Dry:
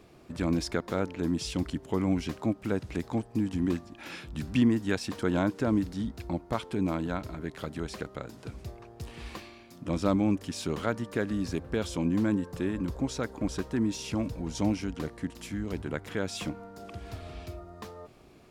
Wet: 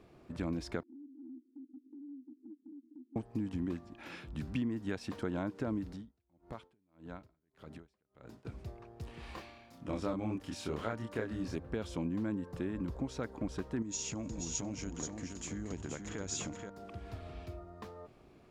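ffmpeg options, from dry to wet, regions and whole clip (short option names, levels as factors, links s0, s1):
-filter_complex "[0:a]asettb=1/sr,asplit=3[s0][s1][s2];[s0]atrim=end=0.834[s3];[s1]atrim=start=0.83:end=3.16,asetpts=PTS-STARTPTS,afade=t=in:d=0.004:c=qsin,afade=t=out:st=2.326:d=0.004:c=qsin,asuperpass=centerf=280:order=8:qfactor=3.3,acompressor=threshold=0.00447:ratio=3:attack=3.2:release=140:knee=1:detection=peak[s4];[s2]atrim=start=3.156[s5];[s3][s4]acrossfade=d=0.004:c1=hsin:c2=qsin[s6];[s6][s5]acrossfade=d=0.004:c1=qsin:c2=hsin,asettb=1/sr,asplit=3[s7][s8][s9];[s7]atrim=end=5.954[s10];[s8]atrim=start=5.95:end=8.45,asetpts=PTS-STARTPTS,afade=t=in:d=0.004:c=qsin,afade=t=out:st=2.496:d=0.004:c=qsin,acompressor=threshold=0.0112:ratio=2.5:attack=3.2:release=140:knee=1:detection=peak,aeval=exprs='val(0)*pow(10,-37*(0.5-0.5*cos(2*PI*1.7*n/s))/20)':c=same[s11];[s9]atrim=start=8.446[s12];[s10][s11]acrossfade=d=0.004:c1=hsin:c2=qsin[s13];[s13][s12]acrossfade=d=0.004:c1=qsin:c2=hsin,asettb=1/sr,asplit=3[s14][s15][s16];[s14]atrim=end=9.204[s17];[s15]atrim=start=9.2:end=11.56,asetpts=PTS-STARTPTS,afade=t=in:d=0.004:c=qsin,afade=t=out:st=2.356:d=0.004:c=qsin,equalizer=f=180:t=o:w=1.8:g=-4.5,asplit=2[s18][s19];[s19]adelay=27,volume=0.794[s20];[s18][s20]amix=inputs=2:normalize=0,atrim=end_sample=104076[s21];[s16]atrim=start=11.556[s22];[s17][s21]acrossfade=d=0.004:c1=hsin:c2=qsin[s23];[s23][s22]acrossfade=d=0.004:c1=qsin:c2=hsin,asettb=1/sr,asplit=3[s24][s25][s26];[s24]atrim=end=13.824[s27];[s25]atrim=start=13.82:end=16.7,asetpts=PTS-STARTPTS,afade=t=in:d=0.004:c=qsin,afade=t=out:st=2.876:d=0.004:c=qsin,acompressor=threshold=0.0251:ratio=6:attack=3.2:release=140:knee=1:detection=peak,lowpass=f=6800:t=q:w=15,aecho=1:1:478:0.531,atrim=end_sample=127008[s28];[s26]atrim=start=16.696[s29];[s27][s28]acrossfade=d=0.004:c1=hsin:c2=qsin[s30];[s30][s29]acrossfade=d=0.004:c1=qsin:c2=hsin,highshelf=f=3700:g=-9,acompressor=threshold=0.0398:ratio=5,volume=0.631"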